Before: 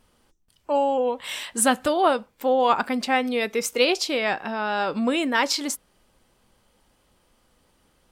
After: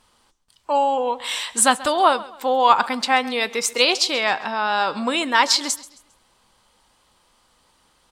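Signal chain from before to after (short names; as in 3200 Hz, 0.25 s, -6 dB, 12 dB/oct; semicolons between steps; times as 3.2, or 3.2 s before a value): graphic EQ 1000/2000/4000/8000 Hz +10/+3/+9/+8 dB; on a send: feedback echo 0.134 s, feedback 36%, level -19 dB; on the sum: gain -3 dB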